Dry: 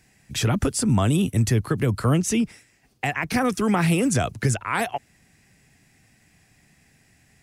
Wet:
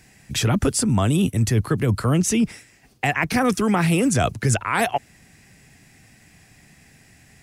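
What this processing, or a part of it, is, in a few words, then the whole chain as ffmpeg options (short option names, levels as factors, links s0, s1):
compression on the reversed sound: -af "areverse,acompressor=threshold=0.0708:ratio=6,areverse,volume=2.24"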